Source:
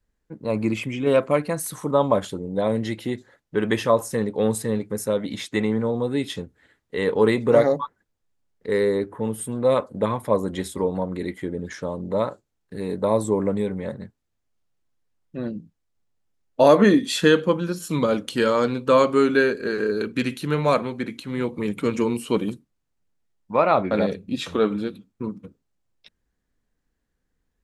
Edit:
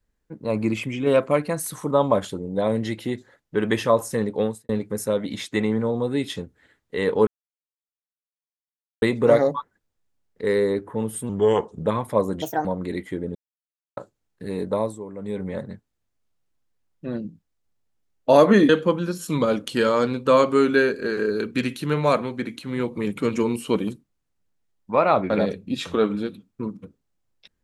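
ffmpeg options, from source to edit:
-filter_complex "[0:a]asplit=12[a][b][c][d][e][f][g][h][i][j][k][l];[a]atrim=end=4.69,asetpts=PTS-STARTPTS,afade=t=out:st=4.41:d=0.28:c=qua[m];[b]atrim=start=4.69:end=7.27,asetpts=PTS-STARTPTS,afade=t=in:d=0.004:c=hsin,afade=t=out:st=2.576:d=0.004:c=hsin,apad=pad_dur=1.75[n];[c]atrim=start=7.27:end=9.544,asetpts=PTS-STARTPTS,afade=t=in:d=0.004:c=hsin[o];[d]atrim=start=9.54:end=10.02,asetpts=PTS-STARTPTS,asetrate=36603,aresample=44100[p];[e]atrim=start=10.016:end=10.574[q];[f]atrim=start=10.57:end=10.96,asetpts=PTS-STARTPTS,asetrate=74088,aresample=44100[r];[g]atrim=start=10.956:end=11.66,asetpts=PTS-STARTPTS,afade=t=out:st=0.7:d=0.004:c=hsin[s];[h]atrim=start=11.66:end=12.28,asetpts=PTS-STARTPTS,volume=0[t];[i]atrim=start=12.28:end=13.29,asetpts=PTS-STARTPTS,afade=t=in:d=0.004:c=hsin,afade=t=out:st=0.71:d=0.3:silence=0.199526[u];[j]atrim=start=13.29:end=13.48,asetpts=PTS-STARTPTS,volume=-14dB[v];[k]atrim=start=13.48:end=17.002,asetpts=PTS-STARTPTS,afade=t=in:d=0.3:silence=0.199526[w];[l]atrim=start=17.298[x];[m][n][o]concat=n=3:v=0:a=1[y];[y][p]acrossfade=d=0.004:c1=hsin:c2=hsin[z];[z][q]acrossfade=d=0.004:c1=hsin:c2=hsin[aa];[aa][r]acrossfade=d=0.004:c1=hsin:c2=hsin[ab];[s][t][u][v][w]concat=n=5:v=0:a=1[ac];[ab][ac]acrossfade=d=0.004:c1=hsin:c2=hsin[ad];[ad][x]acrossfade=d=0.004:c1=hsin:c2=hsin"

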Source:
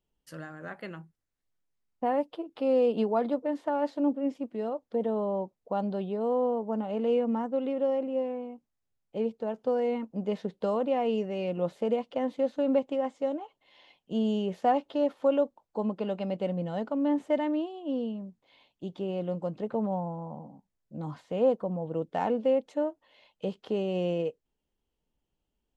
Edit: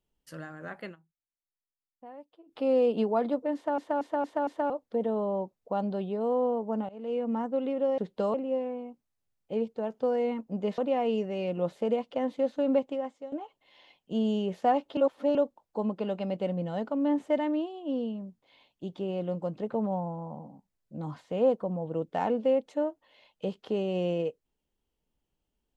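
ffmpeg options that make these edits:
-filter_complex "[0:a]asplit=15[a][b][c][d][e][f][g][h][i][j][k][l][m][n][o];[a]atrim=end=0.96,asetpts=PTS-STARTPTS,afade=t=out:st=0.84:d=0.12:c=qsin:silence=0.112202[p];[b]atrim=start=0.96:end=2.46,asetpts=PTS-STARTPTS,volume=-19dB[q];[c]atrim=start=2.46:end=3.782,asetpts=PTS-STARTPTS,afade=t=in:d=0.12:c=qsin:silence=0.112202[r];[d]atrim=start=3.548:end=3.782[s];[e]atrim=start=3.548:end=3.782[t];[f]atrim=start=3.548:end=3.782[u];[g]atrim=start=3.548:end=3.782[v];[h]atrim=start=4.698:end=6.89,asetpts=PTS-STARTPTS,afade=t=out:st=2.188:d=0.004:c=hsin:silence=0.0944061[w];[i]atrim=start=6.89:end=7.982,asetpts=PTS-STARTPTS,afade=t=in:d=0.52:silence=0.0944061[x];[j]atrim=start=10.418:end=10.782[y];[k]atrim=start=7.978:end=10.422[z];[l]atrim=start=10.778:end=13.32,asetpts=PTS-STARTPTS,afade=t=out:st=2.012:d=0.53:silence=0.158489[aa];[m]atrim=start=13.32:end=14.972,asetpts=PTS-STARTPTS,afade=t=in:d=0.004:c=hsin:silence=0.158489[ab];[n]atrim=start=14.968:end=15.352,asetpts=PTS-STARTPTS,areverse[ac];[o]atrim=start=15.348[ad];[p][q][r]concat=n=3:v=0:a=1[ae];[ae][s]acrossfade=d=0.004:c1=hsin:c2=hsin[af];[af][t]acrossfade=d=0.004:c1=hsin:c2=hsin[ag];[ag][u]acrossfade=d=0.004:c1=hsin:c2=hsin[ah];[ah][v]acrossfade=d=0.004:c1=hsin:c2=hsin[ai];[w][x]concat=n=2:v=0:a=1[aj];[ai][aj]acrossfade=d=0.004:c1=hsin:c2=hsin[ak];[ak][y]acrossfade=d=0.004:c1=hsin:c2=hsin[al];[al][z]acrossfade=d=0.004:c1=hsin:c2=hsin[am];[aa][ab]concat=n=2:v=0:a=1[an];[am][an]acrossfade=d=0.004:c1=hsin:c2=hsin[ao];[ao][ac]acrossfade=d=0.004:c1=hsin:c2=hsin[ap];[ap][ad]acrossfade=d=0.004:c1=hsin:c2=hsin"

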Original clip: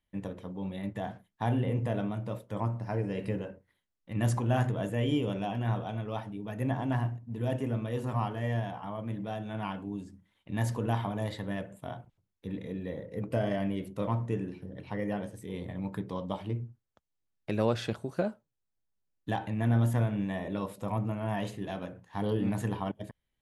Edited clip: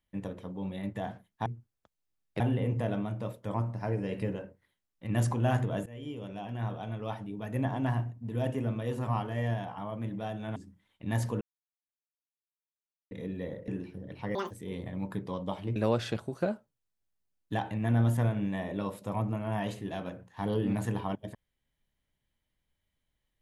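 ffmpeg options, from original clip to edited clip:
-filter_complex "[0:a]asplit=11[a][b][c][d][e][f][g][h][i][j][k];[a]atrim=end=1.462[l];[b]atrim=start=16.578:end=17.522[m];[c]atrim=start=1.458:end=4.92,asetpts=PTS-STARTPTS,afade=t=out:st=3.458:d=0.004:c=hsin:silence=0.112202[n];[d]atrim=start=4.92:end=9.622,asetpts=PTS-STARTPTS,afade=t=in:d=1.33:silence=0.112202[o];[e]atrim=start=10.018:end=10.87,asetpts=PTS-STARTPTS,afade=t=out:st=0.848:d=0.004:c=hsin[p];[f]atrim=start=10.87:end=12.57,asetpts=PTS-STARTPTS,volume=0[q];[g]atrim=start=12.57:end=13.142,asetpts=PTS-STARTPTS,afade=t=in:d=0.004:c=hsin[r];[h]atrim=start=14.358:end=15.034[s];[i]atrim=start=15.03:end=15.33,asetpts=PTS-STARTPTS,asetrate=84231,aresample=44100[t];[j]atrim=start=15.326:end=16.582[u];[k]atrim=start=17.518[v];[l][m]acrossfade=d=0.004:c1=hsin:c2=hsin[w];[n][o]concat=n=2:v=0:a=1[x];[w][x]acrossfade=d=0.004:c1=hsin:c2=hsin[y];[p][q][r]concat=n=3:v=0:a=1[z];[y][z]acrossfade=d=0.004:c1=hsin:c2=hsin[aa];[aa][s]acrossfade=d=0.004:c1=hsin:c2=hsin[ab];[ab][t]acrossfade=d=0.004:c1=hsin:c2=hsin[ac];[ac][u]acrossfade=d=0.004:c1=hsin:c2=hsin[ad];[ad][v]acrossfade=d=0.004:c1=hsin:c2=hsin"

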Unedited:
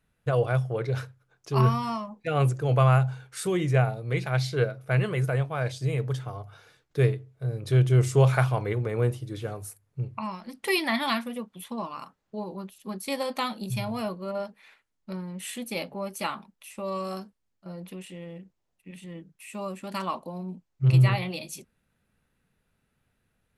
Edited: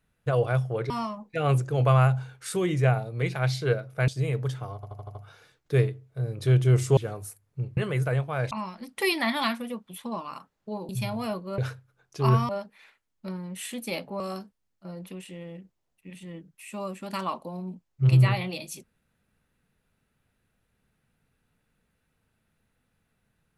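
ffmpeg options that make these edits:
-filter_complex "[0:a]asplit=15[a][b][c][d][e][f][g][h][i][j][k][l][m][n][o];[a]atrim=end=0.902[p];[b]atrim=start=1.808:end=4.992[q];[c]atrim=start=5.728:end=6.482[r];[d]atrim=start=6.398:end=6.482[s];[e]atrim=start=6.398:end=6.482[t];[f]atrim=start=6.398:end=6.482[u];[g]atrim=start=6.398:end=6.482[v];[h]atrim=start=6.398:end=8.222[w];[i]atrim=start=9.368:end=10.172[x];[j]atrim=start=4.988:end=5.732[y];[k]atrim=start=10.168:end=12.552[z];[l]atrim=start=13.638:end=14.332[aa];[m]atrim=start=0.898:end=1.812[ab];[n]atrim=start=14.328:end=16.042[ac];[o]atrim=start=17.008[ad];[p][q]acrossfade=d=0.004:c1=hsin:c2=hsin[ae];[ae][r]acrossfade=d=0.004:c1=hsin:c2=hsin[af];[af][s]acrossfade=d=0.004:c1=hsin:c2=hsin[ag];[ag][t]acrossfade=d=0.004:c1=hsin:c2=hsin[ah];[ah][u]acrossfade=d=0.004:c1=hsin:c2=hsin[ai];[ai][v]acrossfade=d=0.004:c1=hsin:c2=hsin[aj];[aj][w]acrossfade=d=0.004:c1=hsin:c2=hsin[ak];[ak][x]acrossfade=d=0.004:c1=hsin:c2=hsin[al];[al][y]acrossfade=d=0.004:c1=hsin:c2=hsin[am];[am][z]acrossfade=d=0.004:c1=hsin:c2=hsin[an];[an][aa]acrossfade=d=0.004:c1=hsin:c2=hsin[ao];[ao][ab]acrossfade=d=0.004:c1=hsin:c2=hsin[ap];[ap][ac]acrossfade=d=0.004:c1=hsin:c2=hsin[aq];[aq][ad]acrossfade=d=0.004:c1=hsin:c2=hsin"

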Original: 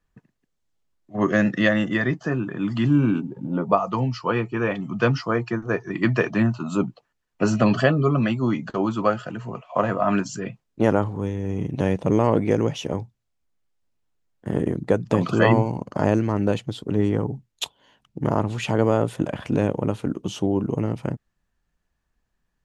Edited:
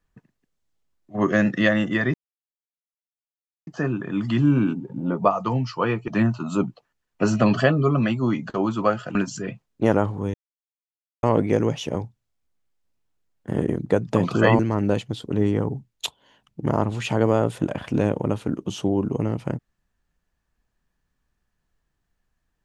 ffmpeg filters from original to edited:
-filter_complex "[0:a]asplit=7[a][b][c][d][e][f][g];[a]atrim=end=2.14,asetpts=PTS-STARTPTS,afade=t=out:st=2.136:d=0.004:c=hsin,apad=pad_dur=1.53[h];[b]atrim=start=2.14:end=4.552,asetpts=PTS-STARTPTS,afade=t=in:d=0.004:c=hsin[i];[c]atrim=start=6.278:end=9.352[j];[d]atrim=start=10.128:end=11.32,asetpts=PTS-STARTPTS,afade=t=out:st=1.188:d=0.004:c=hsin[k];[e]atrim=start=11.32:end=12.21,asetpts=PTS-STARTPTS,volume=0[l];[f]atrim=start=12.21:end=15.572,asetpts=PTS-STARTPTS,afade=t=in:d=0.004:c=hsin[m];[g]atrim=start=16.168[n];[h][i]concat=n=2:v=0:a=1[o];[o][j]acrossfade=d=0.004:c1=hsin:c2=hsin[p];[k][l][m]concat=n=3:v=0:a=1[q];[p][q]acrossfade=d=0.004:c1=hsin:c2=hsin[r];[r][n]acrossfade=d=0.004:c1=hsin:c2=hsin"

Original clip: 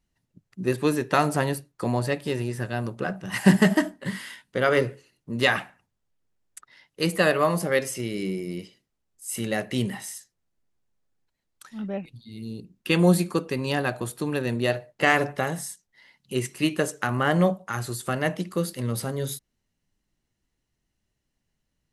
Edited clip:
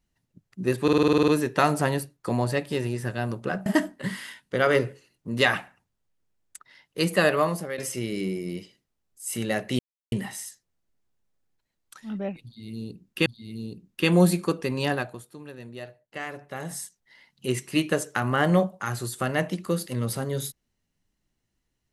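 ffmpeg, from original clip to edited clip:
-filter_complex "[0:a]asplit=16[a][b][c][d][e][f][g][h][i][j][k][l][m][n][o][p];[a]atrim=end=0.882[q];[b]atrim=start=0.828:end=0.882[r];[c]atrim=start=0.828:end=0.882[s];[d]atrim=start=0.828:end=0.882[t];[e]atrim=start=0.828:end=0.882[u];[f]atrim=start=0.828:end=0.882[v];[g]atrim=start=0.828:end=0.882[w];[h]atrim=start=0.828:end=0.882[x];[i]atrim=start=0.828:end=0.882[y];[j]atrim=start=0.828:end=3.212[z];[k]atrim=start=3.678:end=7.8,asetpts=PTS-STARTPTS,afade=t=out:st=3.692:d=0.43:silence=0.211349[aa];[l]atrim=start=7.8:end=9.81,asetpts=PTS-STARTPTS,afade=t=in:d=0.004:c=hsin:silence=0.211349,afade=t=out:st=2.006:d=0.004:c=hsin,apad=pad_dur=0.33[ab];[m]atrim=start=9.81:end=12.952,asetpts=PTS-STARTPTS,afade=t=in:d=0.004:c=hsin[ac];[n]atrim=start=12.128:end=14.2,asetpts=PTS-STARTPTS,afade=t=out:st=1.672:d=0.4:c=qua:silence=0.177828[ad];[o]atrim=start=14.2:end=15.25,asetpts=PTS-STARTPTS,volume=-15dB[ae];[p]atrim=start=15.25,asetpts=PTS-STARTPTS,afade=t=in:d=0.4:c=qua:silence=0.177828[af];[q][r]acrossfade=d=0.004:c1=hsin:c2=hsin[ag];[ag][s]acrossfade=d=0.004:c1=hsin:c2=hsin[ah];[ah][t]acrossfade=d=0.004:c1=hsin:c2=hsin[ai];[ai][u]acrossfade=d=0.004:c1=hsin:c2=hsin[aj];[aj][v]acrossfade=d=0.004:c1=hsin:c2=hsin[ak];[ak][w]acrossfade=d=0.004:c1=hsin:c2=hsin[al];[al][x]acrossfade=d=0.004:c1=hsin:c2=hsin[am];[am][y]acrossfade=d=0.004:c1=hsin:c2=hsin[an];[an][z]acrossfade=d=0.004:c1=hsin:c2=hsin[ao];[aa][ab][ac]concat=n=3:v=0:a=1[ap];[ao][ap]acrossfade=d=0.004:c1=hsin:c2=hsin[aq];[ad][ae][af]concat=n=3:v=0:a=1[ar];[aq][ar]acrossfade=d=0.004:c1=hsin:c2=hsin"

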